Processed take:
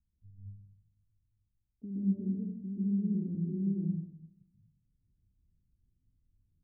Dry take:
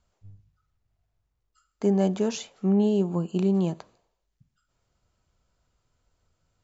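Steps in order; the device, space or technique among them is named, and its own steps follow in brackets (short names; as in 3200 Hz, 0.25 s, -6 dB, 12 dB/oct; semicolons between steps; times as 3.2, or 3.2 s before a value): club heard from the street (limiter -22.5 dBFS, peak gain reduction 11 dB; LPF 250 Hz 24 dB/oct; reverb RT60 0.75 s, pre-delay 0.117 s, DRR -7 dB); gain -7.5 dB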